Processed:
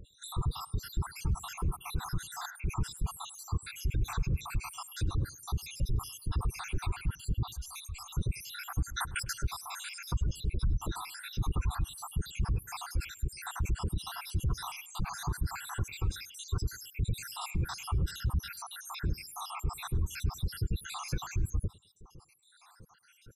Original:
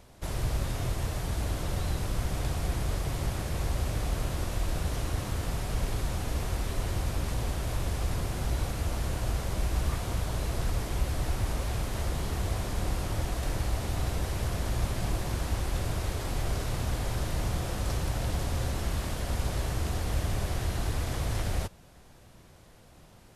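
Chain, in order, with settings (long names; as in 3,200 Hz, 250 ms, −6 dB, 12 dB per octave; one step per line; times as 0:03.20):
time-frequency cells dropped at random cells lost 77%
comb filter 0.8 ms, depth 67%
0:08.90–0:09.33: compressor whose output falls as the input rises −40 dBFS, ratio −1
gate on every frequency bin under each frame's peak −25 dB strong
parametric band 250 Hz −13 dB 0.26 octaves
brickwall limiter −26.5 dBFS, peak gain reduction 11 dB
0:07.51–0:08.17: guitar amp tone stack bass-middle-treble 10-0-10
0:14.39–0:15.03: linear-phase brick-wall low-pass 13,000 Hz
tape delay 103 ms, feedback 29%, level −21 dB, low-pass 3,600 Hz
level +4 dB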